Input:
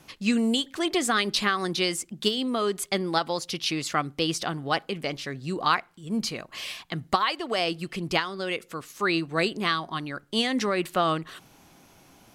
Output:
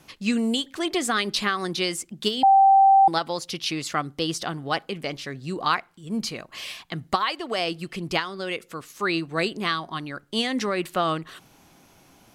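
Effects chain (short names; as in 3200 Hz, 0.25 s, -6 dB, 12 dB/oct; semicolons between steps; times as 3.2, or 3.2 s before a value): 2.43–3.08 bleep 780 Hz -11.5 dBFS; 3.98–4.44 bell 2400 Hz -7 dB 0.23 oct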